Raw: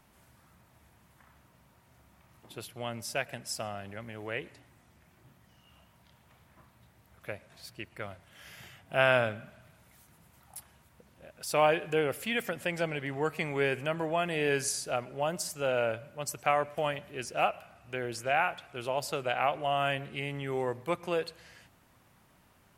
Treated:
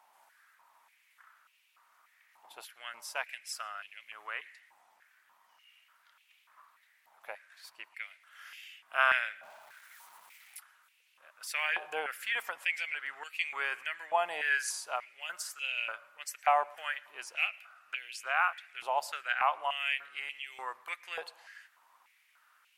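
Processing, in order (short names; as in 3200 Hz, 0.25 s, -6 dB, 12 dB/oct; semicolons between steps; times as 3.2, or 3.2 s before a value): 9.43–10.57 zero-crossing step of -50 dBFS; stepped high-pass 3.4 Hz 840–2600 Hz; gain -4.5 dB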